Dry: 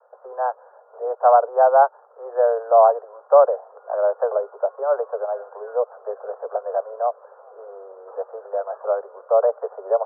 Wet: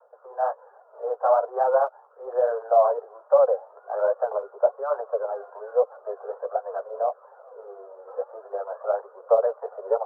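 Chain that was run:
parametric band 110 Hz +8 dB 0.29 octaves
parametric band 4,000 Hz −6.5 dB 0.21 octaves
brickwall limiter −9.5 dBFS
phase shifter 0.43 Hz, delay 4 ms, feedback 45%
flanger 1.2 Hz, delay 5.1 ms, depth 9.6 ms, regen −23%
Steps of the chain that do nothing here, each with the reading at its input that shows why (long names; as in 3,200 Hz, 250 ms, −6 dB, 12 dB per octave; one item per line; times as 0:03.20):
parametric band 110 Hz: nothing at its input below 380 Hz
parametric band 4,000 Hz: nothing at its input above 1,500 Hz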